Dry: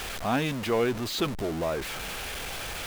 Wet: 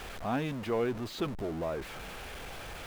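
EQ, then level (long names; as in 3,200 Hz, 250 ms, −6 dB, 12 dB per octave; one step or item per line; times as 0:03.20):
high-shelf EQ 2,300 Hz −9 dB
−4.5 dB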